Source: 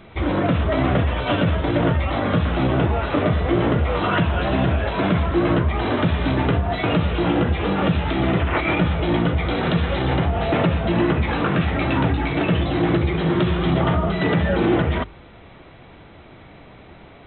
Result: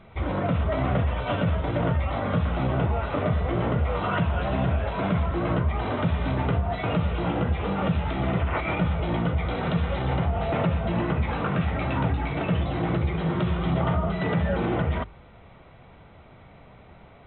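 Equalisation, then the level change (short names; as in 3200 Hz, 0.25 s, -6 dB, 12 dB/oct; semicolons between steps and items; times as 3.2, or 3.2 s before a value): bell 320 Hz -8 dB 0.67 oct; high shelf 3000 Hz -11 dB; notch 1700 Hz, Q 15; -3.5 dB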